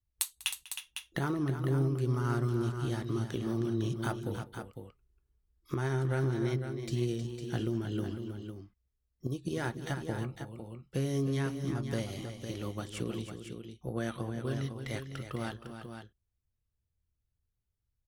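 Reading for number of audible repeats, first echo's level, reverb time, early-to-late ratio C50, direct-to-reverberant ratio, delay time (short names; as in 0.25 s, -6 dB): 3, -20.0 dB, none, none, none, 0.196 s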